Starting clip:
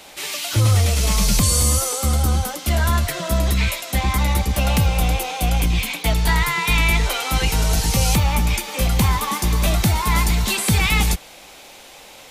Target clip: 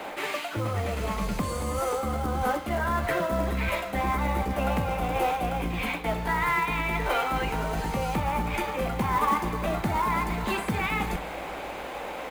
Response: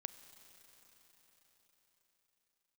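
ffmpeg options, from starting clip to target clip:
-filter_complex "[0:a]areverse,acompressor=threshold=-31dB:ratio=4,areverse,acrossover=split=210 2100:gain=0.126 1 0.0891[a][b][c];[a][b][c]amix=inputs=3:normalize=0,bandreject=f=5.6k:w=12,aecho=1:1:42|61:0.178|0.126,acrusher=bits=5:mode=log:mix=0:aa=0.000001,asplit=2[d][e];[1:a]atrim=start_sample=2205,lowshelf=f=150:g=11.5[f];[e][f]afir=irnorm=-1:irlink=0,volume=0.5dB[g];[d][g]amix=inputs=2:normalize=0,volume=6.5dB"

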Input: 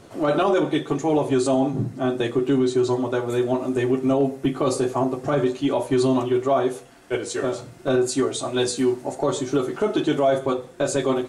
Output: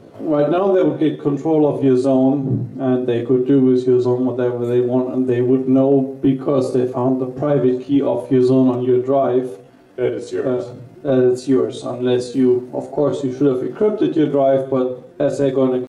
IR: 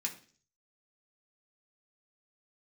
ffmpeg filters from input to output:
-af "atempo=0.71,equalizer=f=125:t=o:w=1:g=7,equalizer=f=250:t=o:w=1:g=7,equalizer=f=500:t=o:w=1:g=8,equalizer=f=8k:t=o:w=1:g=-8,volume=-3dB"

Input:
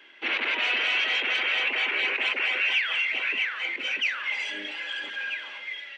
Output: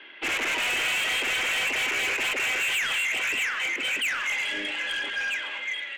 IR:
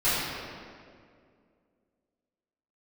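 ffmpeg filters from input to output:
-filter_complex "[0:a]lowpass=f=4.2k:w=0.5412,lowpass=f=4.2k:w=1.3066,asoftclip=type=tanh:threshold=-30dB,asplit=2[a][b];[1:a]atrim=start_sample=2205,adelay=107[c];[b][c]afir=irnorm=-1:irlink=0,volume=-29dB[d];[a][d]amix=inputs=2:normalize=0,volume=6dB"

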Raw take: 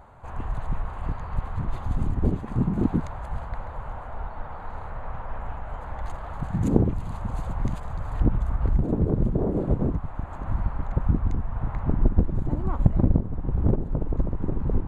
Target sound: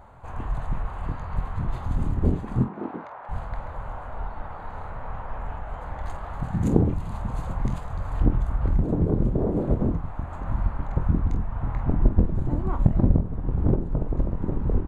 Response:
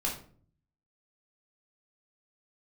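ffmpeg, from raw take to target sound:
-filter_complex "[0:a]asettb=1/sr,asplit=3[a][b][c];[a]atrim=end=2.634[d];[b]atrim=start=2.63:end=3.29,asetpts=PTS-STARTPTS,afade=t=in:d=0.004:c=qsin,afade=t=out:st=0.656:d=0.004:c=qsin,highpass=460,lowpass=2.2k[e];[c]atrim=start=3.286[f];[d][e]acrossfade=d=0.004:c1=hsin:c2=qsin[g];[g][f]acrossfade=d=0.004:c1=qsin:c2=hsin,asplit=2[h][i];[i]aecho=0:1:24|48:0.335|0.251[j];[h][j]amix=inputs=2:normalize=0"

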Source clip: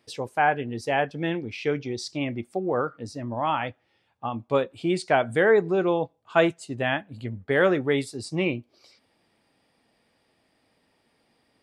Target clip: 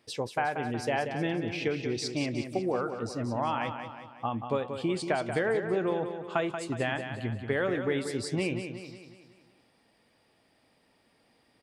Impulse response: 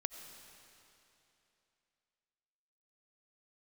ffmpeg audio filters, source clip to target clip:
-af "acompressor=threshold=-26dB:ratio=6,aecho=1:1:183|366|549|732|915|1098:0.398|0.199|0.0995|0.0498|0.0249|0.0124"

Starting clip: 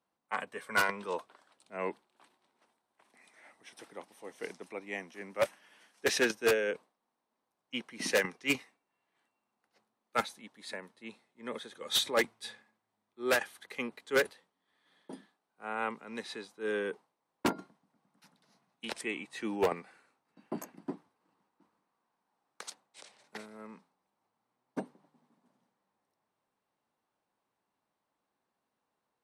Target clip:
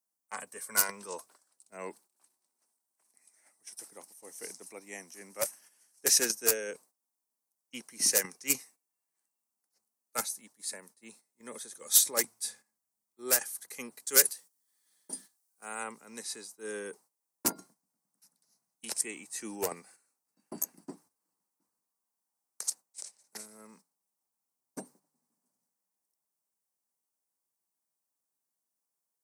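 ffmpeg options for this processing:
-filter_complex "[0:a]asplit=3[a][b][c];[a]afade=t=out:st=14.05:d=0.02[d];[b]highshelf=f=2.2k:g=9,afade=t=in:st=14.05:d=0.02,afade=t=out:st=15.82:d=0.02[e];[c]afade=t=in:st=15.82:d=0.02[f];[d][e][f]amix=inputs=3:normalize=0,agate=range=-9dB:threshold=-55dB:ratio=16:detection=peak,aexciter=amount=6.9:drive=8.7:freq=5.1k,volume=-6dB"

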